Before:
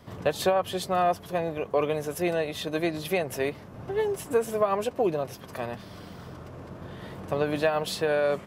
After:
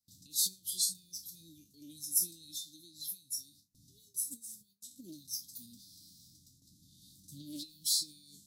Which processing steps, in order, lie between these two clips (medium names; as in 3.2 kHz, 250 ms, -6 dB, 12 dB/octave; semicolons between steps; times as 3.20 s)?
spectral sustain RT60 0.34 s; tilt shelf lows -8 dB, about 780 Hz; 2.57–4.98 s: compression 16:1, threshold -31 dBFS, peak gain reduction 13.5 dB; spectral noise reduction 12 dB; peak limiter -21.5 dBFS, peak gain reduction 11.5 dB; Chebyshev band-stop 300–3800 Hz, order 5; gate with hold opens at -53 dBFS; tone controls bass +3 dB, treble +15 dB; loudspeaker Doppler distortion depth 0.13 ms; trim -7 dB